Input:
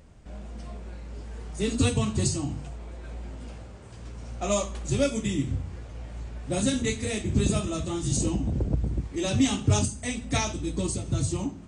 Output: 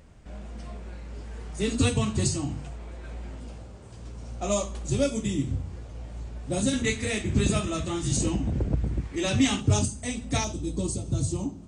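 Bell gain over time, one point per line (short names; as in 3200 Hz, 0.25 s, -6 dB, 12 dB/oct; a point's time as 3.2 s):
bell 1900 Hz 1.5 oct
+2 dB
from 3.4 s -4 dB
from 6.73 s +5.5 dB
from 9.61 s -3 dB
from 10.44 s -10.5 dB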